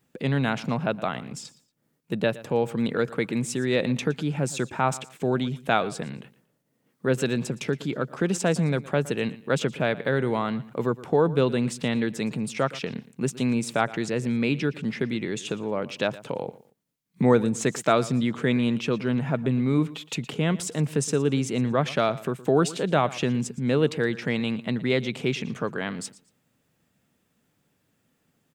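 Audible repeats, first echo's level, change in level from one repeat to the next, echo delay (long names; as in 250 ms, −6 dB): 2, −18.5 dB, −11.5 dB, 116 ms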